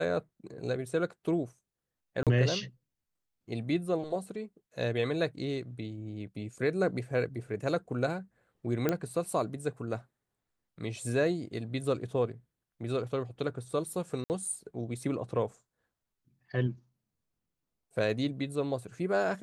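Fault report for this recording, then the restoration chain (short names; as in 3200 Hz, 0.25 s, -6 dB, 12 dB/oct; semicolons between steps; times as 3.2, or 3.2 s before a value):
2.23–2.27 gap 37 ms
8.89 pop -14 dBFS
14.24–14.3 gap 59 ms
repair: de-click; interpolate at 2.23, 37 ms; interpolate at 14.24, 59 ms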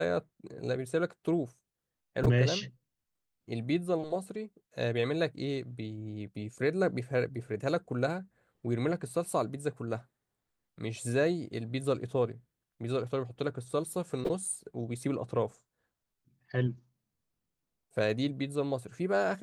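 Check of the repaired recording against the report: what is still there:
none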